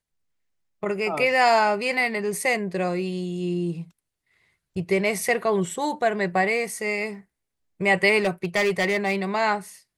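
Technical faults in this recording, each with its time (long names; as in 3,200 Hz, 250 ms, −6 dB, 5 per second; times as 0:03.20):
0:08.18–0:09.22: clipping −17.5 dBFS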